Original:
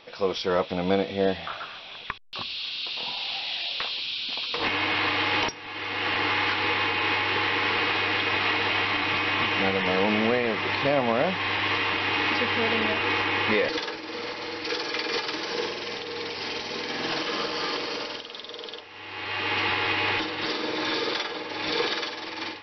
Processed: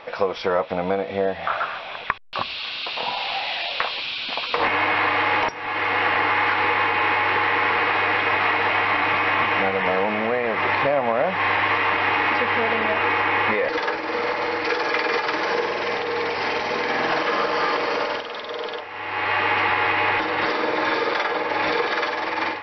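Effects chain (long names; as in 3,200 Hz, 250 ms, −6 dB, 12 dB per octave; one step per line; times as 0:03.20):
high-shelf EQ 2,300 Hz −7.5 dB
downward compressor, threshold −30 dBFS, peak gain reduction 12 dB
flat-topped bell 1,100 Hz +8.5 dB 2.5 octaves
level +6 dB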